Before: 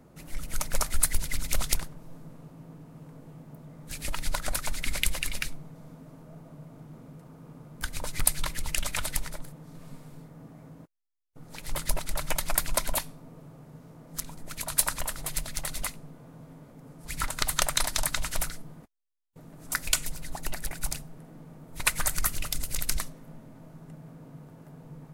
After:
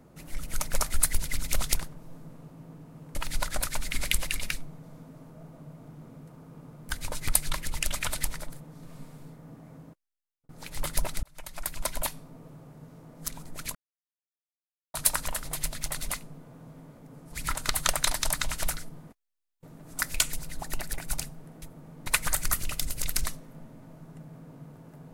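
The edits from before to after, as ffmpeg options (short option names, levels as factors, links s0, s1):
-filter_complex "[0:a]asplit=7[s0][s1][s2][s3][s4][s5][s6];[s0]atrim=end=3.152[s7];[s1]atrim=start=4.068:end=11.41,asetpts=PTS-STARTPTS,afade=t=out:st=6.692:d=0.65[s8];[s2]atrim=start=11.41:end=12.15,asetpts=PTS-STARTPTS,afade=t=in:d=0.004:c=hsin,afade=t=out:st=0.736:d=0.004:c=hsin[s9];[s3]atrim=start=12.15:end=14.67,asetpts=PTS-STARTPTS,afade=t=in:d=1.02,afade=t=out:st=2.516:d=0.004:c=hsin,apad=pad_dur=1.19[s10];[s4]atrim=start=14.67:end=21.352,asetpts=PTS-STARTPTS,afade=t=in:d=0.004:c=hsin[s11];[s5]atrim=start=21.348:end=21.792,asetpts=PTS-STARTPTS,areverse[s12];[s6]atrim=start=21.788[s13];[s8][s9][s10][s11]concat=n=4:v=0:a=1[s14];[s7][s14]acrossfade=d=0.004:c1=hsin:c2=hsin[s15];[s15][s12]acrossfade=d=0.004:c1=hsin:c2=hsin[s16];[s16][s13]acrossfade=d=0.004:c1=hsin:c2=hsin"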